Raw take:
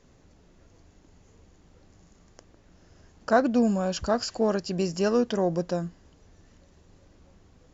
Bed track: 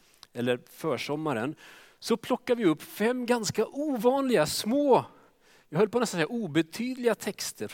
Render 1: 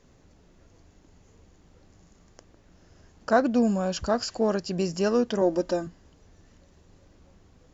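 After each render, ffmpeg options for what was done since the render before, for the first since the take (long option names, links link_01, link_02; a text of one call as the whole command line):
ffmpeg -i in.wav -filter_complex "[0:a]asettb=1/sr,asplit=3[link_01][link_02][link_03];[link_01]atrim=end=5.414[link_04];[link_02]atrim=start=5.41:end=5.87,asetpts=PTS-STARTPTS,afade=type=in:duration=0.004:curve=qsin,afade=type=out:start_time=0.456:duration=0.004:curve=qsin,aecho=1:1:3.3:0.92,atrim=end_sample=20286[link_05];[link_03]atrim=start=5.866[link_06];[link_04][link_05]acrossfade=duration=0.004:curve1=hsin:curve2=qsin[link_07];[link_07][link_06]acrossfade=duration=0.004:curve1=qsin:curve2=hsin" out.wav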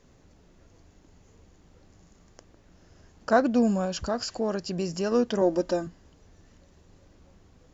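ffmpeg -i in.wav -filter_complex "[0:a]asettb=1/sr,asplit=3[link_01][link_02][link_03];[link_01]atrim=end=3.854[link_04];[link_02]atrim=start=3.85:end=5.12,asetpts=PTS-STARTPTS,afade=type=in:duration=0.004:curve=qsin,afade=type=out:start_time=1.266:duration=0.004:curve=qsin,acompressor=threshold=-29dB:ratio=1.5:attack=3.2:release=140:knee=1:detection=peak[link_05];[link_03]atrim=start=5.116[link_06];[link_04][link_05]acrossfade=duration=0.004:curve1=hsin:curve2=qsin[link_07];[link_07][link_06]acrossfade=duration=0.004:curve1=qsin:curve2=hsin" out.wav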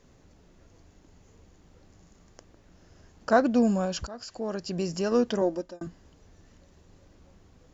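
ffmpeg -i in.wav -filter_complex "[0:a]asplit=3[link_01][link_02][link_03];[link_01]atrim=end=4.07,asetpts=PTS-STARTPTS,afade=type=out:start_time=4.066:duration=0.004:curve=hsin:silence=0.16788[link_04];[link_02]atrim=start=4.07:end=5.81,asetpts=PTS-STARTPTS,afade=type=in:duration=0.74:silence=0.16788,afade=type=out:start_time=1.24:duration=0.5[link_05];[link_03]atrim=start=5.81,asetpts=PTS-STARTPTS,afade=type=in:duration=0.004:curve=hsin[link_06];[link_04][link_05][link_06]concat=n=3:v=0:a=1" out.wav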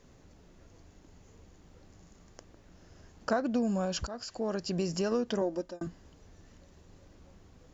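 ffmpeg -i in.wav -af "acompressor=threshold=-26dB:ratio=6" out.wav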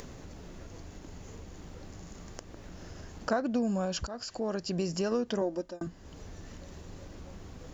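ffmpeg -i in.wav -af "acompressor=mode=upward:threshold=-34dB:ratio=2.5" out.wav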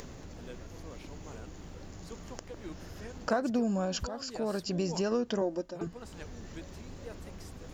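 ffmpeg -i in.wav -i bed.wav -filter_complex "[1:a]volume=-21dB[link_01];[0:a][link_01]amix=inputs=2:normalize=0" out.wav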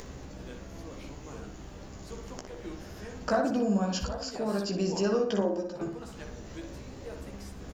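ffmpeg -i in.wav -filter_complex "[0:a]asplit=2[link_01][link_02];[link_02]adelay=15,volume=-4.5dB[link_03];[link_01][link_03]amix=inputs=2:normalize=0,asplit=2[link_04][link_05];[link_05]adelay=60,lowpass=frequency=2300:poles=1,volume=-4dB,asplit=2[link_06][link_07];[link_07]adelay=60,lowpass=frequency=2300:poles=1,volume=0.48,asplit=2[link_08][link_09];[link_09]adelay=60,lowpass=frequency=2300:poles=1,volume=0.48,asplit=2[link_10][link_11];[link_11]adelay=60,lowpass=frequency=2300:poles=1,volume=0.48,asplit=2[link_12][link_13];[link_13]adelay=60,lowpass=frequency=2300:poles=1,volume=0.48,asplit=2[link_14][link_15];[link_15]adelay=60,lowpass=frequency=2300:poles=1,volume=0.48[link_16];[link_04][link_06][link_08][link_10][link_12][link_14][link_16]amix=inputs=7:normalize=0" out.wav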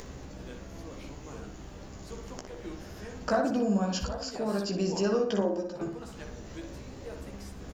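ffmpeg -i in.wav -af anull out.wav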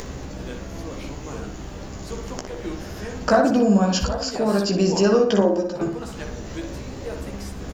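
ffmpeg -i in.wav -af "volume=10dB" out.wav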